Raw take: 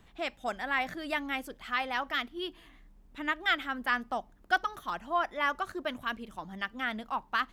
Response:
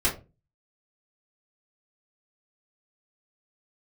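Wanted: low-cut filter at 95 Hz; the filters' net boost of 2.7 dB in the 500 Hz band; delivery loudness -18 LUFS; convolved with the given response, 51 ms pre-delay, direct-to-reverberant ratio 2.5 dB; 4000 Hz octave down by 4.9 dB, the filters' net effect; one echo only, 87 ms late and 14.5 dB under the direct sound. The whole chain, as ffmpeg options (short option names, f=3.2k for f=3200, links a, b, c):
-filter_complex "[0:a]highpass=95,equalizer=f=500:t=o:g=4,equalizer=f=4k:t=o:g=-7,aecho=1:1:87:0.188,asplit=2[a][b];[1:a]atrim=start_sample=2205,adelay=51[c];[b][c]afir=irnorm=-1:irlink=0,volume=-14dB[d];[a][d]amix=inputs=2:normalize=0,volume=13dB"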